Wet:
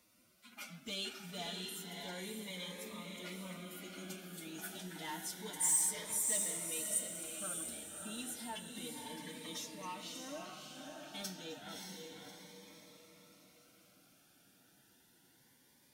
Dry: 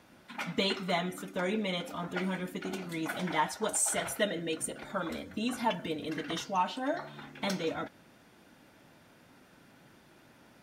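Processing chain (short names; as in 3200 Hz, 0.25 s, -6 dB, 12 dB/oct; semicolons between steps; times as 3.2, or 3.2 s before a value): time stretch by phase-locked vocoder 1.5×; soft clip -22.5 dBFS, distortion -19 dB; pre-emphasis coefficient 0.8; diffused feedback echo 0.599 s, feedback 47%, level -3 dB; cascading phaser rising 0.3 Hz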